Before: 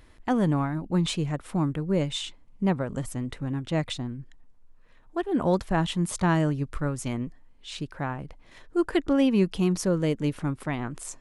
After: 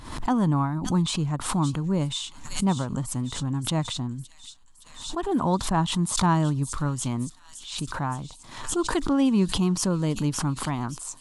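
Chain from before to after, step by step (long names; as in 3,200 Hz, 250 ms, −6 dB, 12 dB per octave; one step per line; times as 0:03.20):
octave-band graphic EQ 125/250/500/1,000/2,000/4,000/8,000 Hz +7/+5/−5/+12/−5/+5/+7 dB
delay with a high-pass on its return 567 ms, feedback 64%, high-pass 4,400 Hz, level −7 dB
background raised ahead of every attack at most 77 dB per second
level −4.5 dB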